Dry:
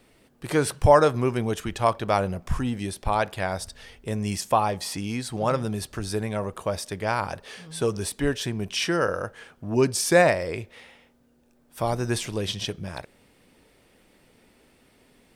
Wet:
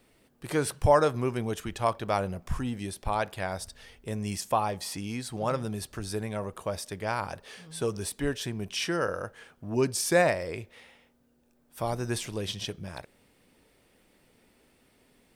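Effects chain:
high-shelf EQ 12,000 Hz +5.5 dB
level −5 dB

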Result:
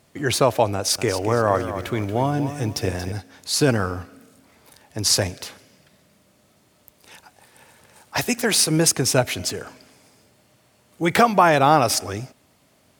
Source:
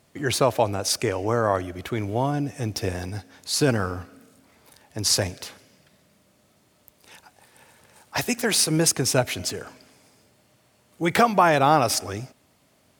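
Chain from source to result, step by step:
0:00.75–0:03.12: feedback echo at a low word length 232 ms, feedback 35%, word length 8 bits, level −10.5 dB
level +2.5 dB

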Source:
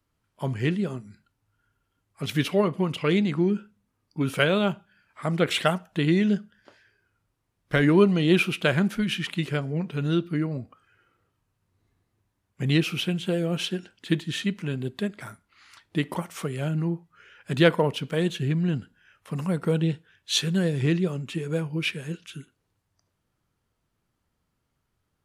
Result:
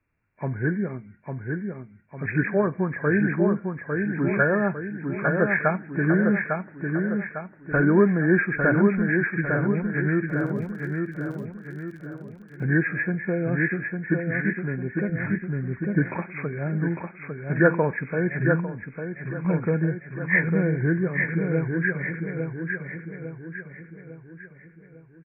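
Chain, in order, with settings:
hearing-aid frequency compression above 1,400 Hz 4 to 1
repeating echo 852 ms, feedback 47%, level −4.5 dB
0:10.26–0:12.62: surface crackle 46 per second −37 dBFS
0:15.09–0:16.08: low-shelf EQ 180 Hz +11 dB
0:18.60–0:19.45: downward compressor 6 to 1, threshold −28 dBFS, peak gain reduction 10 dB
one half of a high-frequency compander decoder only

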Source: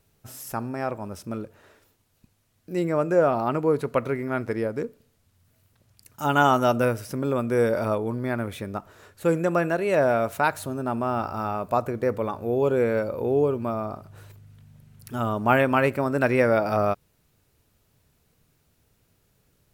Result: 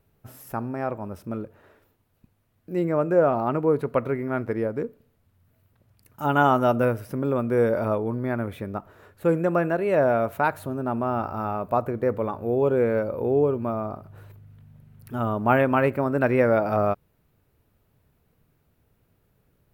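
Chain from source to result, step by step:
parametric band 6,600 Hz −13.5 dB 2.1 octaves
level +1 dB

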